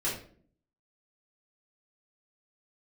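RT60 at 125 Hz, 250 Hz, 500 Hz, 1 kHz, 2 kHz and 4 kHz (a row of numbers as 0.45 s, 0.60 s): 0.75 s, 0.80 s, 0.60 s, 0.45 s, 0.40 s, 0.35 s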